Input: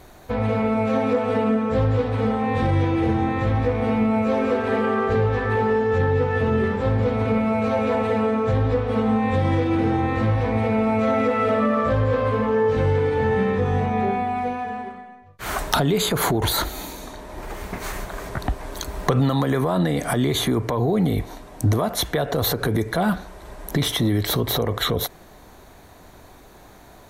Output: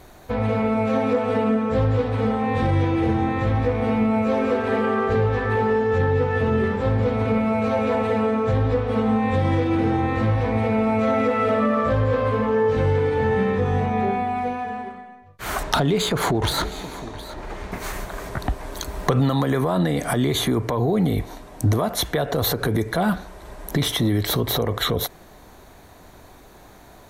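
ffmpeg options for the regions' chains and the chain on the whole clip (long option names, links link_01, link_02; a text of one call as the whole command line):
ffmpeg -i in.wav -filter_complex "[0:a]asettb=1/sr,asplit=3[link_01][link_02][link_03];[link_01]atrim=end=15.634[link_04];[link_02]atrim=start=15.63:end=17.72,asetpts=PTS-STARTPTS,afade=type=in:duration=0.004:curve=qsin,afade=type=out:start_time=2.086:duration=0.004:curve=qsin,adynamicsmooth=sensitivity=5.5:basefreq=5300,aecho=1:1:715:0.158,atrim=end_sample=92169[link_05];[link_03]atrim=start=17.716[link_06];[link_04][link_05]acrossfade=duration=0.004:curve1=hsin:curve2=qsin[link_07];[link_07][link_06]acrossfade=duration=0.004:curve1=qsin:curve2=hsin" out.wav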